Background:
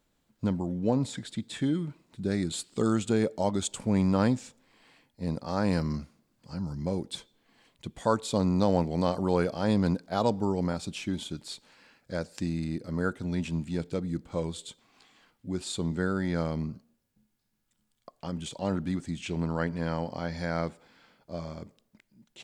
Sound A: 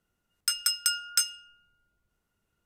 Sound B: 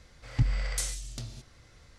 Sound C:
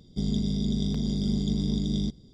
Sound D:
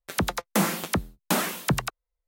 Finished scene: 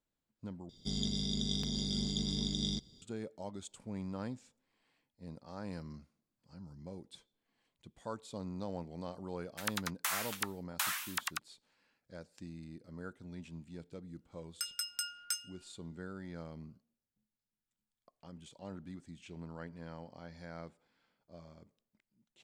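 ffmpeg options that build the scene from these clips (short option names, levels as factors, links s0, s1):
-filter_complex "[0:a]volume=0.15[s0];[3:a]tiltshelf=f=970:g=-7.5[s1];[4:a]highpass=f=1100:w=0.5412,highpass=f=1100:w=1.3066[s2];[s0]asplit=2[s3][s4];[s3]atrim=end=0.694[s5];[s1]atrim=end=2.33,asetpts=PTS-STARTPTS,volume=0.668[s6];[s4]atrim=start=3.016[s7];[s2]atrim=end=2.27,asetpts=PTS-STARTPTS,volume=0.447,afade=t=in:d=0.004:c=hsin,afade=t=out:st=2.266:d=0.004:c=hsin,adelay=9490[s8];[1:a]atrim=end=2.65,asetpts=PTS-STARTPTS,volume=0.266,afade=t=in:d=0.004:c=hsin,afade=t=out:st=2.646:d=0.004:c=hsin,adelay=14130[s9];[s5][s6]acrossfade=d=0.004:c1=hsin:c2=hsin[s10];[s10][s7]acrossfade=d=0.004:c1=hsin:c2=hsin[s11];[s11][s8][s9]amix=inputs=3:normalize=0"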